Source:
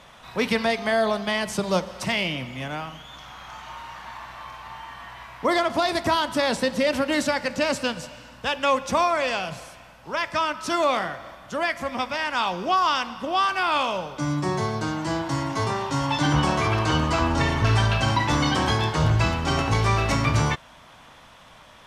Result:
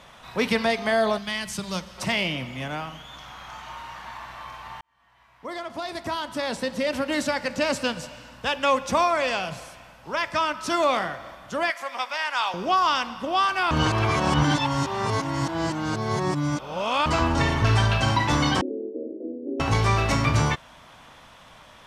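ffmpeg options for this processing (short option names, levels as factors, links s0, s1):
-filter_complex "[0:a]asettb=1/sr,asplit=3[s0][s1][s2];[s0]atrim=end=1.184[s3];[s1]atrim=start=1.18:end=1.98,asetpts=PTS-STARTPTS,afade=t=in:d=0.004:c=qsin,afade=t=out:st=0.796:d=0.004:c=qsin,equalizer=f=530:t=o:w=2.3:g=-12.5[s4];[s2]atrim=start=1.976[s5];[s3][s4]acrossfade=d=0.004:c1=hsin:c2=qsin[s6];[s6][s5]acrossfade=d=0.004:c1=qsin:c2=hsin,asettb=1/sr,asplit=3[s7][s8][s9];[s7]atrim=end=11.704[s10];[s8]atrim=start=11.7:end=12.54,asetpts=PTS-STARTPTS,afade=t=in:d=0.004:c=qsin,afade=t=out:st=0.836:d=0.004:c=qsin,highpass=720[s11];[s9]atrim=start=12.536[s12];[s10][s11]acrossfade=d=0.004:c1=hsin:c2=qsin[s13];[s13][s12]acrossfade=d=0.004:c1=qsin:c2=hsin,asettb=1/sr,asplit=3[s14][s15][s16];[s14]atrim=end=18.614[s17];[s15]atrim=start=18.61:end=19.6,asetpts=PTS-STARTPTS,afade=t=in:d=0.004:c=qsin,afade=t=out:st=0.986:d=0.004:c=qsin,asuperpass=centerf=360:order=12:qfactor=1.2[s18];[s16]atrim=start=19.596[s19];[s17][s18]acrossfade=d=0.004:c1=hsin:c2=qsin[s20];[s20][s19]acrossfade=d=0.004:c1=qsin:c2=hsin,asplit=4[s21][s22][s23][s24];[s21]atrim=end=4.81,asetpts=PTS-STARTPTS,afade=t=out:st=4.806:d=0.004:c=hsin[s25];[s22]atrim=start=4.81:end=13.712,asetpts=PTS-STARTPTS,afade=t=in:d=3.08[s26];[s23]atrim=start=13.708:end=17.062,asetpts=PTS-STARTPTS,areverse[s27];[s24]atrim=start=17.058[s28];[s25][s26]concat=n=2:v=0:a=1[s29];[s29][s27]acrossfade=d=0.004:c1=hsin:c2=hsin[s30];[s30][s28]acrossfade=d=0.004:c1=hsin:c2=hsin"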